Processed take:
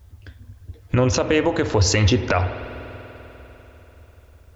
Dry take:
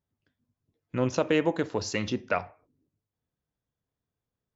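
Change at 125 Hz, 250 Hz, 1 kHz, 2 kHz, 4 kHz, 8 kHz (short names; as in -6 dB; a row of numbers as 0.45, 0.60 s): +16.0 dB, +7.0 dB, +8.0 dB, +8.5 dB, +12.0 dB, n/a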